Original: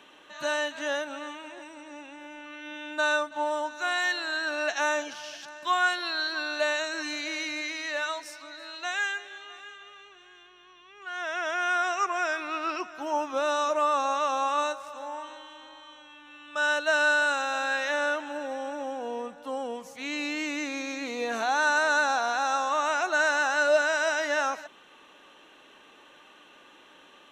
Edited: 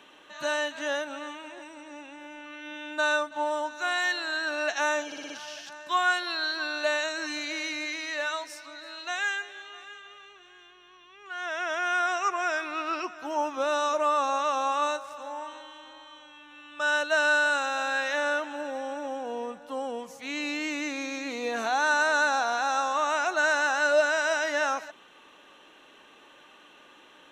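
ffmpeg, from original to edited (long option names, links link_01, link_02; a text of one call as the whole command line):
ffmpeg -i in.wav -filter_complex "[0:a]asplit=5[link_01][link_02][link_03][link_04][link_05];[link_01]atrim=end=5.122[link_06];[link_02]atrim=start=5.058:end=5.122[link_07];[link_03]atrim=start=5.058:end=5.122[link_08];[link_04]atrim=start=5.058:end=5.122[link_09];[link_05]atrim=start=5.058[link_10];[link_06][link_07]acrossfade=duration=0.004:curve1=hsin:curve2=hsin[link_11];[link_11][link_08]acrossfade=duration=0.004:curve1=hsin:curve2=hsin[link_12];[link_12][link_09]acrossfade=duration=0.004:curve1=hsin:curve2=hsin[link_13];[link_13][link_10]acrossfade=duration=0.004:curve1=hsin:curve2=hsin" out.wav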